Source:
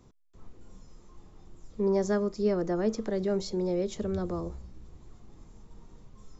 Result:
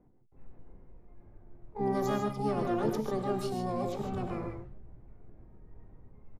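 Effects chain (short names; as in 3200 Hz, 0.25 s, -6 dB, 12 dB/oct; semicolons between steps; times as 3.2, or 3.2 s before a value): low-pass opened by the level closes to 520 Hz, open at -24 dBFS; harmoniser -7 st -5 dB, +12 st -4 dB; non-linear reverb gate 0.17 s rising, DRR 3.5 dB; gain -6.5 dB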